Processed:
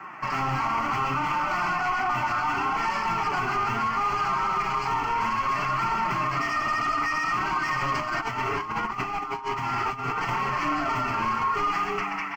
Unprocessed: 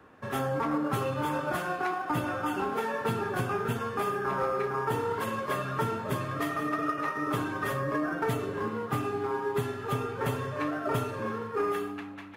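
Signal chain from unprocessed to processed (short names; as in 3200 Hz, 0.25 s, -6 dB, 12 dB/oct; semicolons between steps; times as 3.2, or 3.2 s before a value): short-mantissa float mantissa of 2-bit; bell 1800 Hz +12.5 dB 0.58 oct; outdoor echo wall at 22 m, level -7 dB; flange 0.21 Hz, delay 5.8 ms, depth 8.9 ms, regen +85%; overdrive pedal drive 28 dB, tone 3700 Hz, clips at -13 dBFS; high shelf 3400 Hz -11 dB; fixed phaser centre 2500 Hz, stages 8; flange 0.67 Hz, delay 5.1 ms, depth 3.8 ms, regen -11%; notches 50/100/150/200/250/300 Hz; 7.95–10.29 negative-ratio compressor -34 dBFS, ratio -0.5; limiter -25 dBFS, peak gain reduction 7 dB; gain +7 dB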